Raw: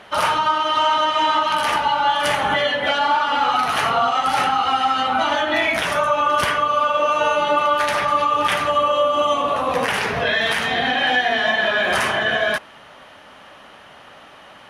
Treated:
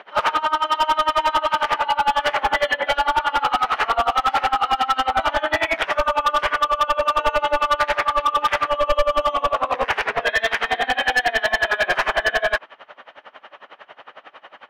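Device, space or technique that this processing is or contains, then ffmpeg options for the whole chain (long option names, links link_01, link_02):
helicopter radio: -af "highpass=370,lowpass=2700,aeval=exprs='val(0)*pow(10,-23*(0.5-0.5*cos(2*PI*11*n/s))/20)':channel_layout=same,asoftclip=type=hard:threshold=-19.5dB,asubboost=boost=4.5:cutoff=80,volume=7dB"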